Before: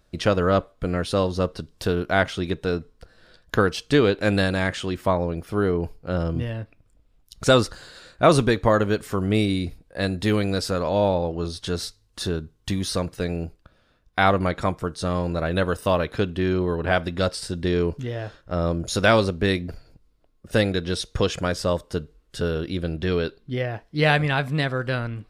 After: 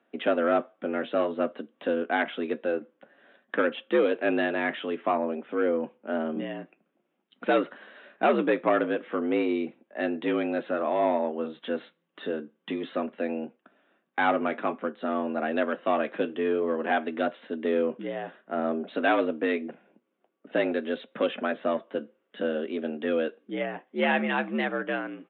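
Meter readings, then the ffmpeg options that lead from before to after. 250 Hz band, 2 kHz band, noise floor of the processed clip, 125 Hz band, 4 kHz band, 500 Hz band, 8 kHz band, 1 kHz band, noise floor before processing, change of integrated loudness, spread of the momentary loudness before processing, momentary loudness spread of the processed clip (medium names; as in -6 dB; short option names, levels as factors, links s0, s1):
-4.0 dB, -4.0 dB, -76 dBFS, -22.0 dB, -11.5 dB, -3.5 dB, under -40 dB, -3.0 dB, -62 dBFS, -4.5 dB, 10 LU, 9 LU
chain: -af "aresample=8000,asoftclip=type=tanh:threshold=0.2,aresample=44100,flanger=delay=4.4:depth=4.5:regen=-62:speed=0.52:shape=sinusoidal,highpass=f=160:t=q:w=0.5412,highpass=f=160:t=q:w=1.307,lowpass=f=3100:t=q:w=0.5176,lowpass=f=3100:t=q:w=0.7071,lowpass=f=3100:t=q:w=1.932,afreqshift=66,volume=1.33"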